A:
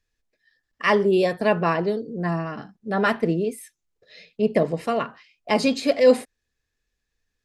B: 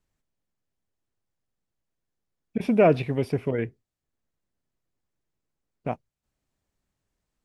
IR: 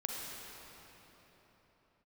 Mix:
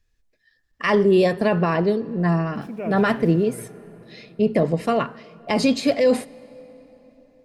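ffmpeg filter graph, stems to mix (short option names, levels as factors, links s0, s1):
-filter_complex "[0:a]alimiter=limit=0.237:level=0:latency=1:release=15,volume=1.19,asplit=2[s0][s1];[s1]volume=0.0841[s2];[1:a]highshelf=f=5100:g=7.5,bandreject=f=50:t=h:w=6,bandreject=f=100:t=h:w=6,bandreject=f=150:t=h:w=6,aeval=exprs='val(0)*gte(abs(val(0)),0.0126)':c=same,volume=0.133,asplit=2[s3][s4];[s4]volume=0.473[s5];[2:a]atrim=start_sample=2205[s6];[s2][s5]amix=inputs=2:normalize=0[s7];[s7][s6]afir=irnorm=-1:irlink=0[s8];[s0][s3][s8]amix=inputs=3:normalize=0,lowshelf=f=160:g=9"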